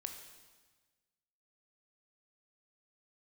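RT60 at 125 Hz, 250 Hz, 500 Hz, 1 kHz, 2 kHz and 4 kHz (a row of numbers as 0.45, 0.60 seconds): 1.6, 1.5, 1.4, 1.3, 1.3, 1.3 seconds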